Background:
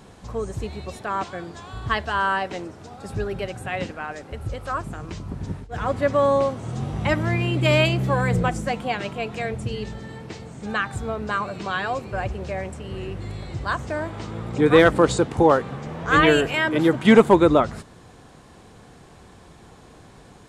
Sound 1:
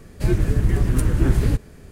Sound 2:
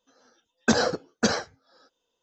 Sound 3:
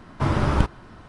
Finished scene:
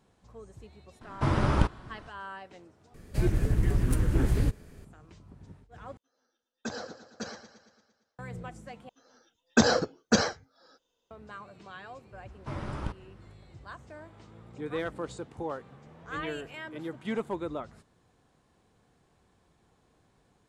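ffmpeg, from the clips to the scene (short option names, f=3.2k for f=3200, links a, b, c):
-filter_complex "[3:a]asplit=2[a][b];[2:a]asplit=2[c][d];[0:a]volume=-19.5dB[e];[1:a]aeval=exprs='0.335*(abs(mod(val(0)/0.335+3,4)-2)-1)':c=same[f];[c]aecho=1:1:114|228|342|456|570|684|798:0.251|0.148|0.0874|0.0516|0.0304|0.018|0.0106[g];[d]lowshelf=f=140:g=5[h];[e]asplit=4[i][j][k][l];[i]atrim=end=2.944[m];[f]atrim=end=1.91,asetpts=PTS-STARTPTS,volume=-6.5dB[n];[j]atrim=start=4.846:end=5.974[o];[g]atrim=end=2.22,asetpts=PTS-STARTPTS,volume=-16dB[p];[k]atrim=start=8.186:end=8.894[q];[h]atrim=end=2.22,asetpts=PTS-STARTPTS,volume=-1dB[r];[l]atrim=start=11.106[s];[a]atrim=end=1.08,asetpts=PTS-STARTPTS,volume=-4dB,afade=t=in:d=0.004:c=hsin,afade=t=out:st=1.076:d=0.004:c=hsin,adelay=1010[t];[b]atrim=end=1.08,asetpts=PTS-STARTPTS,volume=-15dB,afade=t=in:d=0.004:c=hsin,afade=t=out:st=1.076:d=0.004:c=hsin,adelay=12260[u];[m][n]acrossfade=d=0.004:c1=hsin:c2=hsin[v];[v][o]acrossfade=d=0.004:c1=hsin:c2=hsin[w];[w][p]acrossfade=d=0.004:c1=hsin:c2=hsin[x];[x][q]acrossfade=d=0.004:c1=hsin:c2=hsin[y];[y][r]acrossfade=d=0.004:c1=hsin:c2=hsin[z];[z][s]acrossfade=d=0.004:c1=hsin:c2=hsin[aa];[aa][t][u]amix=inputs=3:normalize=0"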